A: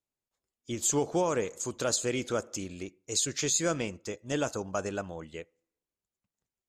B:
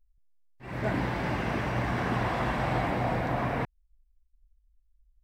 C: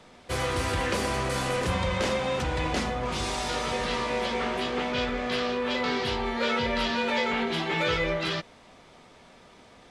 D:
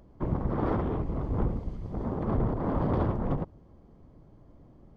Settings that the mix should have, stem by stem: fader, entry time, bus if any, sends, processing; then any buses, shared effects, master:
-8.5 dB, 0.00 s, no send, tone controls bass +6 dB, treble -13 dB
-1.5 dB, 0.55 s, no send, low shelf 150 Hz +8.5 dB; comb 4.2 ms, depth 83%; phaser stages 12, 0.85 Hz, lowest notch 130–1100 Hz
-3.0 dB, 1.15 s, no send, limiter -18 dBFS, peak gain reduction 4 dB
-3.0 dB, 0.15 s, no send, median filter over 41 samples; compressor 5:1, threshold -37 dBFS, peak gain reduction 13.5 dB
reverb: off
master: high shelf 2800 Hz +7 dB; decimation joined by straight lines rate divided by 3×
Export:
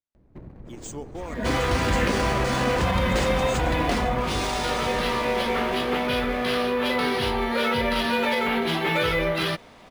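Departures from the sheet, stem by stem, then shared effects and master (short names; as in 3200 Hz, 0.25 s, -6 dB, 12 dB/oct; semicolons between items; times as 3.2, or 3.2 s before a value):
stem A: missing tone controls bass +6 dB, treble -13 dB; stem C -3.0 dB -> +4.5 dB; master: missing high shelf 2800 Hz +7 dB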